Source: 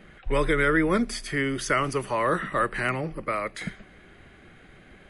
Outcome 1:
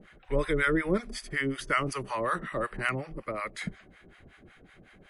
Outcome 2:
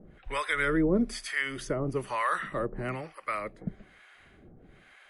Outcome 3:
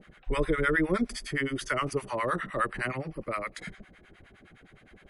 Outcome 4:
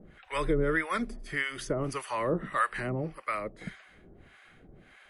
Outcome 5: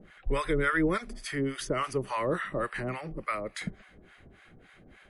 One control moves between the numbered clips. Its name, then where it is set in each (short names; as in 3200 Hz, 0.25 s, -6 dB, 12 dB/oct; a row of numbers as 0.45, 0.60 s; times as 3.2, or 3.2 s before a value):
harmonic tremolo, rate: 5.4, 1.1, 9.7, 1.7, 3.5 Hz